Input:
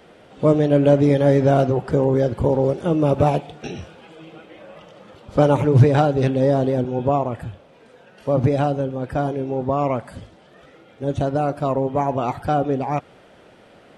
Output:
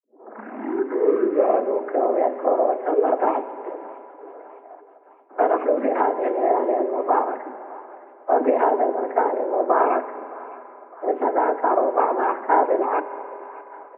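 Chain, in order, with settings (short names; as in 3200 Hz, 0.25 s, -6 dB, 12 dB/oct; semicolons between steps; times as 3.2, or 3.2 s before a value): tape start at the beginning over 2.01 s; low-pass opened by the level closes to 540 Hz, open at -12 dBFS; vocal rider 2 s; gate -45 dBFS, range -19 dB; frequency shift +27 Hz; noise vocoder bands 16; feedback echo 0.612 s, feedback 49%, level -23.5 dB; FDN reverb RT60 2.5 s, low-frequency decay 0.9×, high-frequency decay 0.7×, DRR 12.5 dB; mistuned SSB +100 Hz 230–2100 Hz; mismatched tape noise reduction encoder only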